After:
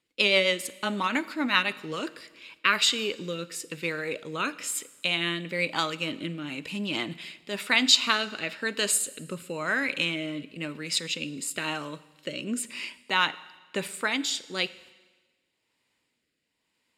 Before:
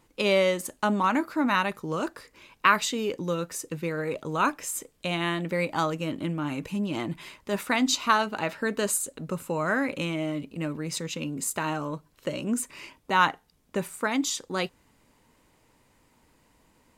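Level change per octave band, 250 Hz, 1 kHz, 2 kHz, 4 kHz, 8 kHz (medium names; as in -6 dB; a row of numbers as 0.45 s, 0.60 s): -4.5 dB, -5.5 dB, +2.5 dB, +7.5 dB, +1.5 dB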